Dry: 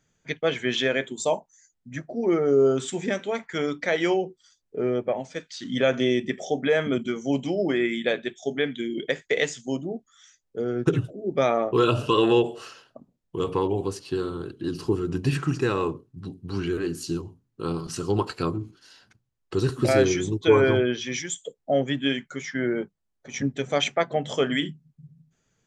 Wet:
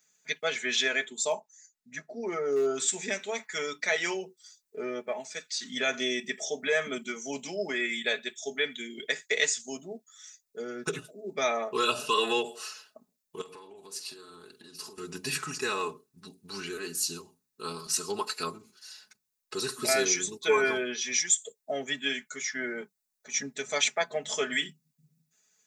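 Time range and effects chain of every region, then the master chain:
1.04–2.75 high shelf 6900 Hz -11.5 dB + hard clip -12.5 dBFS
13.41–14.98 compressor 16:1, threshold -36 dBFS + doubler 46 ms -12 dB
whole clip: tilt +4.5 dB/oct; notch 3100 Hz, Q 7.1; comb 4.7 ms, depth 73%; gain -6 dB

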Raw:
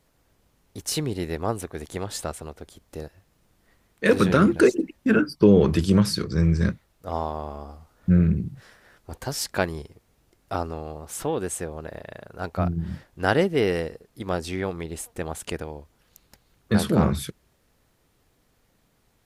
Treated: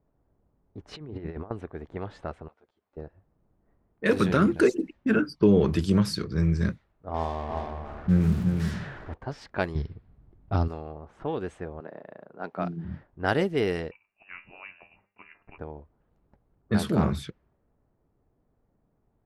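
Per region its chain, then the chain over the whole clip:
0.93–1.51 high shelf 5500 Hz -7 dB + notches 60/120/180/240 Hz + negative-ratio compressor -32 dBFS, ratio -0.5
2.48–2.97 weighting filter ITU-R 468 + compressor 2.5:1, threshold -49 dBFS + ensemble effect
7.14–9.14 zero-crossing step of -32.5 dBFS + doubler 49 ms -12.5 dB + echo 0.356 s -5 dB
9.75–10.68 tone controls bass +14 dB, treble +6 dB + careless resampling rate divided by 4×, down none, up filtered
11.8–12.85 HPF 170 Hz 24 dB/oct + high shelf 3500 Hz +7.5 dB
13.91–15.58 inverted band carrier 2800 Hz + resonator 100 Hz, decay 0.37 s, mix 70%
whole clip: high shelf 8200 Hz -6.5 dB; notch 510 Hz, Q 16; low-pass opened by the level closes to 780 Hz, open at -18 dBFS; gain -3.5 dB

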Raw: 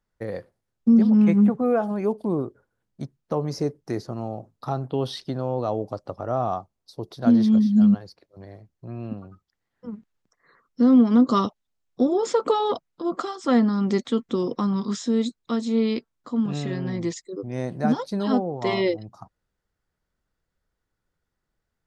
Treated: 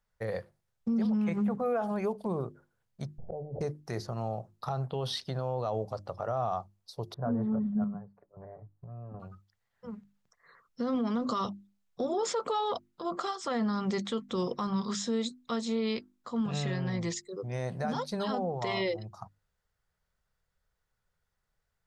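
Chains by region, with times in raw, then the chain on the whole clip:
3.18–3.61 steep low-pass 780 Hz 72 dB/oct + auto swell 0.419 s + fast leveller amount 100%
7.14–9.2 LPF 1300 Hz 24 dB/oct + comb 6.9 ms, depth 50% + chopper 1 Hz, depth 60%, duty 70%
whole clip: bell 290 Hz -14 dB 0.71 oct; notches 50/100/150/200/250/300/350 Hz; limiter -23 dBFS

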